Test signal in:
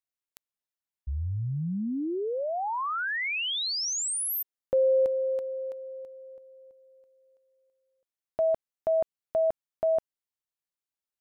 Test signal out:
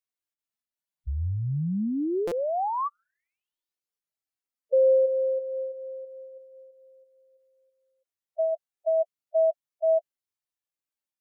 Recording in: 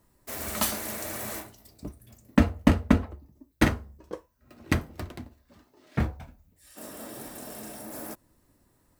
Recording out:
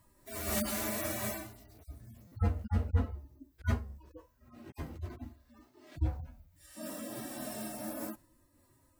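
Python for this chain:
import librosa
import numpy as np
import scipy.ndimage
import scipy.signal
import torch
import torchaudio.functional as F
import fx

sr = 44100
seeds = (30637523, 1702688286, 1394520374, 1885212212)

y = fx.hpss_only(x, sr, part='harmonic')
y = fx.buffer_glitch(y, sr, at_s=(2.27,), block=256, repeats=7)
y = fx.am_noise(y, sr, seeds[0], hz=5.7, depth_pct=55)
y = y * 10.0 ** (4.5 / 20.0)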